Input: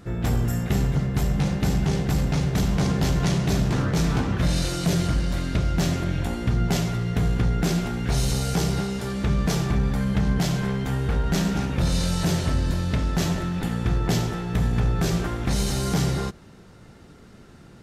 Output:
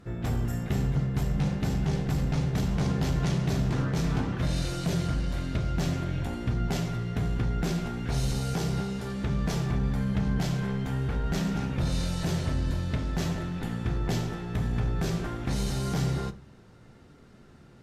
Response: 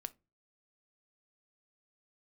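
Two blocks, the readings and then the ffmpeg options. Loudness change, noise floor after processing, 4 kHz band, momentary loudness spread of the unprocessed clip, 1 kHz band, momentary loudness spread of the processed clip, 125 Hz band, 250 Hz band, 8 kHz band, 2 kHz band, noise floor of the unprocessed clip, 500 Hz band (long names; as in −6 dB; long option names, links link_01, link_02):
−5.0 dB, −53 dBFS, −7.0 dB, 3 LU, −5.5 dB, 4 LU, −4.5 dB, −5.5 dB, −8.5 dB, −6.0 dB, −48 dBFS, −5.5 dB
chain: -filter_complex "[0:a]highshelf=frequency=5600:gain=-5[link_01];[1:a]atrim=start_sample=2205,asetrate=29988,aresample=44100[link_02];[link_01][link_02]afir=irnorm=-1:irlink=0,volume=-4dB"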